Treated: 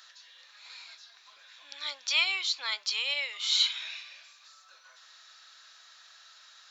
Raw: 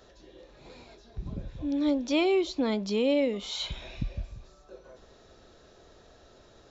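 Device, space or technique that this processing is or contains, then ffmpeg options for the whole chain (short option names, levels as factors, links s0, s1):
headphones lying on a table: -af "highpass=f=1300:w=0.5412,highpass=f=1300:w=1.3066,equalizer=f=4400:t=o:w=0.45:g=4,volume=2.37"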